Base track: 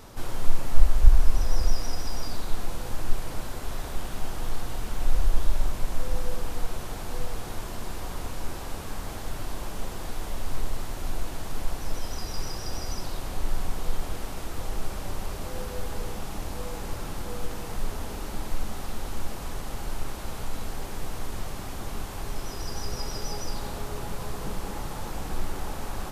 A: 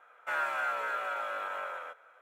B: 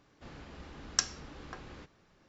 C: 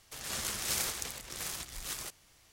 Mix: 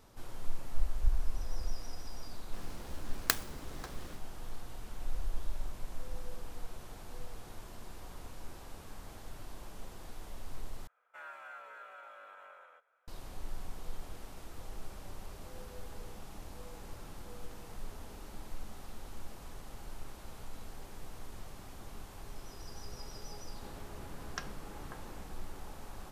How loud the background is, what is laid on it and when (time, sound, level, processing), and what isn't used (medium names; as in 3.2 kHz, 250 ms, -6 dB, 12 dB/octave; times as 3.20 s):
base track -13.5 dB
2.31 s: add B -1 dB + delay time shaken by noise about 3.3 kHz, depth 0.081 ms
10.87 s: replace with A -16.5 dB
23.39 s: add B -3.5 dB + low-pass 2.5 kHz
not used: C